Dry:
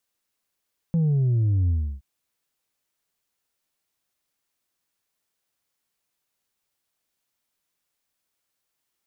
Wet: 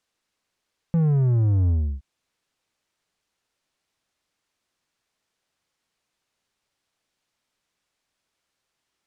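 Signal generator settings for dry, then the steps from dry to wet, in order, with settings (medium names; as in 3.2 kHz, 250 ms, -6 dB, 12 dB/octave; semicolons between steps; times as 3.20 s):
sub drop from 170 Hz, over 1.07 s, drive 2.5 dB, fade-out 0.32 s, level -18.5 dB
in parallel at -1.5 dB: saturation -31 dBFS; on the sum: distance through air 61 m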